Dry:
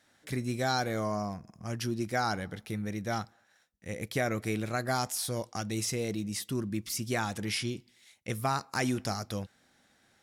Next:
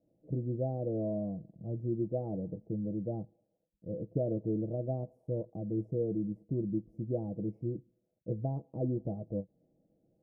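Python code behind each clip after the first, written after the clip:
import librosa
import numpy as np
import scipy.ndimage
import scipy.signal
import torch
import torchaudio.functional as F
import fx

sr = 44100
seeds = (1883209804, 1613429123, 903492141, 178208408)

y = scipy.signal.sosfilt(scipy.signal.ellip(4, 1.0, 60, 590.0, 'lowpass', fs=sr, output='sos'), x)
y = y + 0.53 * np.pad(y, (int(6.2 * sr / 1000.0), 0))[:len(y)]
y = fx.end_taper(y, sr, db_per_s=450.0)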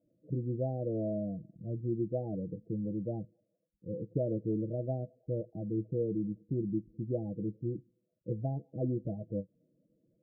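y = fx.spec_topn(x, sr, count=16)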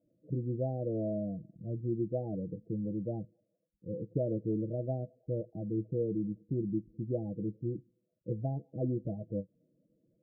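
y = x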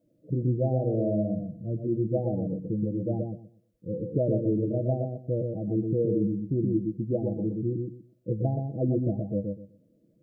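y = fx.echo_filtered(x, sr, ms=123, feedback_pct=24, hz=800.0, wet_db=-3)
y = F.gain(torch.from_numpy(y), 6.0).numpy()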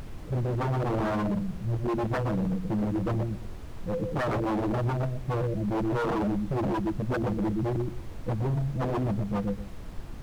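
y = fx.spec_expand(x, sr, power=1.9)
y = fx.dmg_noise_colour(y, sr, seeds[0], colour='brown', level_db=-40.0)
y = 10.0 ** (-25.5 / 20.0) * (np.abs((y / 10.0 ** (-25.5 / 20.0) + 3.0) % 4.0 - 2.0) - 1.0)
y = F.gain(torch.from_numpy(y), 3.0).numpy()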